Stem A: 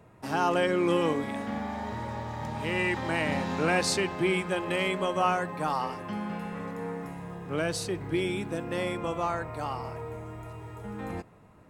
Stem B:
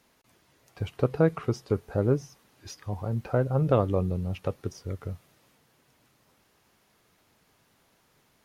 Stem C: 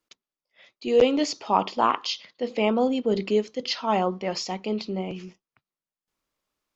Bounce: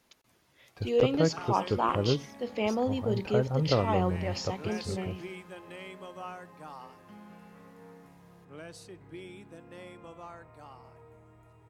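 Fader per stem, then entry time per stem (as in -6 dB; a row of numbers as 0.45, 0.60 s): -16.0, -3.5, -6.5 dB; 1.00, 0.00, 0.00 s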